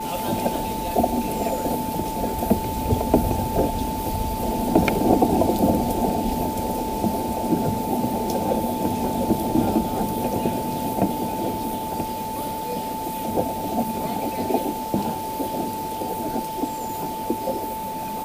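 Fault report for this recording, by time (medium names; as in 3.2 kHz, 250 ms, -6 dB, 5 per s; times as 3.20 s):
whine 880 Hz -28 dBFS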